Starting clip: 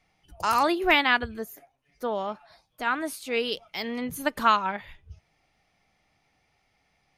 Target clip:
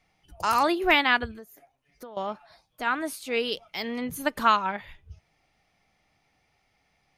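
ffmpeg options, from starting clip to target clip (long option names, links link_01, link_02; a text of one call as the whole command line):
ffmpeg -i in.wav -filter_complex "[0:a]asettb=1/sr,asplit=3[link_01][link_02][link_03];[link_01]atrim=end=1.314[link_04];[link_02]atrim=start=1.31:end=2.17,asetpts=PTS-STARTPTS,afade=type=in:duration=0.004:curve=qsin,afade=type=out:start_time=0.856:duration=0.004:curve=qsin,acompressor=threshold=-42dB:ratio=6[link_05];[link_03]atrim=start=2.166[link_06];[link_04][link_05]acrossfade=duration=0.004:curve1=hsin:curve2=qsin[link_07];[link_07][link_06]acrossfade=duration=0.004:curve1=qsin:curve2=hsin" out.wav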